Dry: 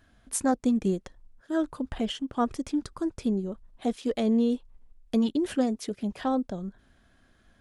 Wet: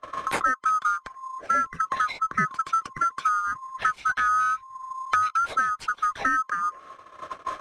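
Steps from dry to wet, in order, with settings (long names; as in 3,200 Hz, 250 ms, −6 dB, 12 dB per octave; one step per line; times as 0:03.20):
neighbouring bands swapped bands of 1,000 Hz
noise gate −59 dBFS, range −36 dB
in parallel at −7 dB: sample-rate reduction 7,600 Hz, jitter 0%
on the sum: high-frequency loss of the air 81 metres
multiband upward and downward compressor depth 100%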